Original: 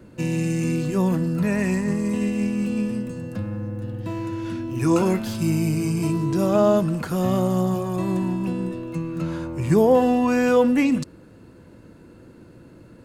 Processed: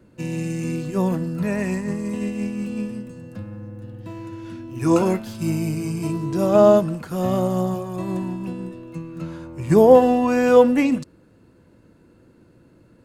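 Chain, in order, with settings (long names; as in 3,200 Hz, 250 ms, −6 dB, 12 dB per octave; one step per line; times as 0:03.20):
dynamic equaliser 620 Hz, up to +4 dB, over −29 dBFS, Q 1.1
expander for the loud parts 1.5 to 1, over −29 dBFS
level +3 dB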